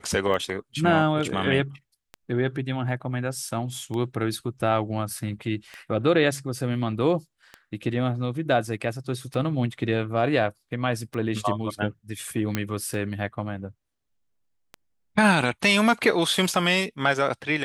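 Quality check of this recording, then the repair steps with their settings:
tick 33 1/3 rpm -21 dBFS
12.55 s: pop -10 dBFS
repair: de-click

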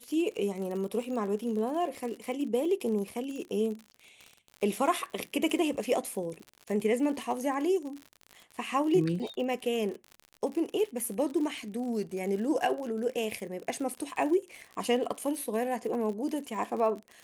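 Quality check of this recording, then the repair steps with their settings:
crackle 56 per s -36 dBFS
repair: de-click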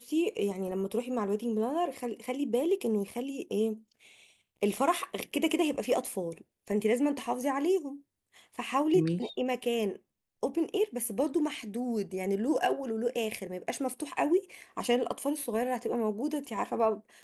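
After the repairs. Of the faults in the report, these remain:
nothing left

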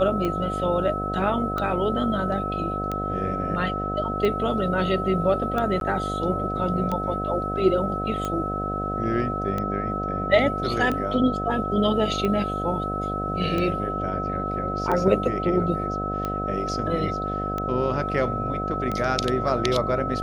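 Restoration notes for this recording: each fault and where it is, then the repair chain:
buzz 50 Hz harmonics 15 -30 dBFS
tick 45 rpm -15 dBFS
whine 1.3 kHz -28 dBFS
5.80–5.81 s: dropout 12 ms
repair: de-click; de-hum 50 Hz, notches 15; band-stop 1.3 kHz, Q 30; interpolate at 5.80 s, 12 ms

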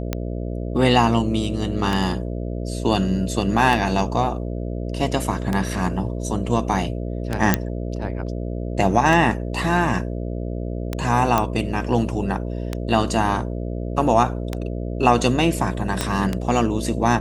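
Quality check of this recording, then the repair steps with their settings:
buzz 60 Hz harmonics 11 -27 dBFS
tick 33 1/3 rpm -9 dBFS
7.54 s: pop -1 dBFS
11.38 s: pop -5 dBFS
16.01 s: pop -6 dBFS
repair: de-click; de-hum 60 Hz, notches 11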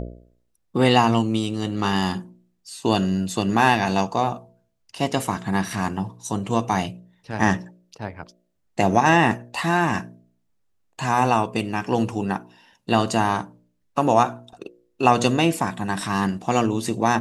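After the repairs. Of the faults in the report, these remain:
16.01 s: pop

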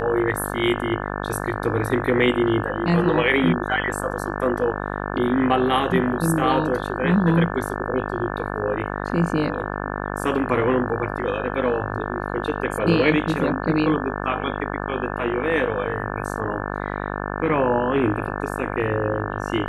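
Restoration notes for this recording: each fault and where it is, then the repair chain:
buzz 50 Hz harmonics 35 -28 dBFS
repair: de-hum 50 Hz, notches 35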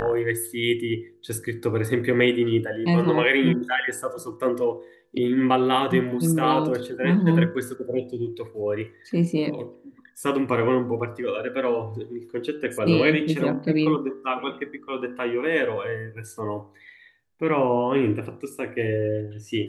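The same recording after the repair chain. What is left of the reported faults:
nothing left

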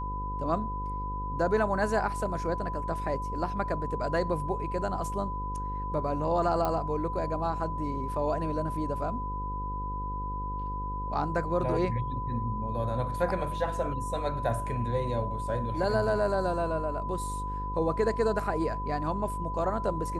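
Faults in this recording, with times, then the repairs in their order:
buzz 50 Hz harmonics 11 -36 dBFS
whine 1 kHz -34 dBFS
6.65 s: pop -16 dBFS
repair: de-click; de-hum 50 Hz, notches 11; band-stop 1 kHz, Q 30

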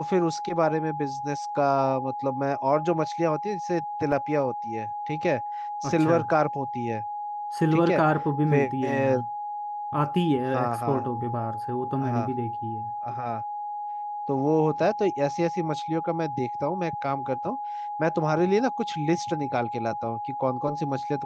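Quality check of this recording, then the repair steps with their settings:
whine 830 Hz -30 dBFS
4.12 s: dropout 3.1 ms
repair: band-stop 830 Hz, Q 30; interpolate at 4.12 s, 3.1 ms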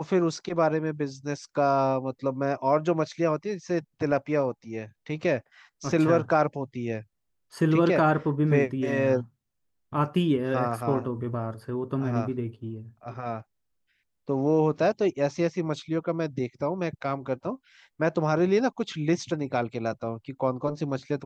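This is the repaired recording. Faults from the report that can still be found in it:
nothing left

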